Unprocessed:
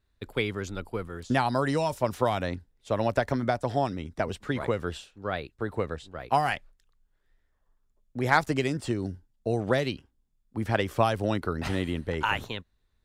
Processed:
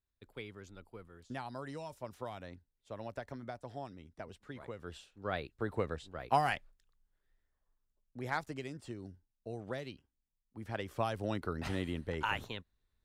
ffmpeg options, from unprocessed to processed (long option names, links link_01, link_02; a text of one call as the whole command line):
ffmpeg -i in.wav -af "volume=3dB,afade=type=in:start_time=4.77:duration=0.59:silence=0.237137,afade=type=out:start_time=6.42:duration=2.11:silence=0.298538,afade=type=in:start_time=10.59:duration=0.93:silence=0.398107" out.wav